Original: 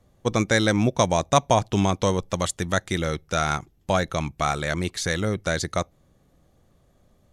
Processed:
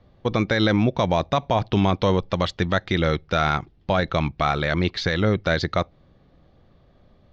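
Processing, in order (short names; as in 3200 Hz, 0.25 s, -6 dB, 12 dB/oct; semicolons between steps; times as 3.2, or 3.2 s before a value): steep low-pass 4700 Hz 36 dB/oct; limiter -15 dBFS, peak gain reduction 10 dB; gain +5 dB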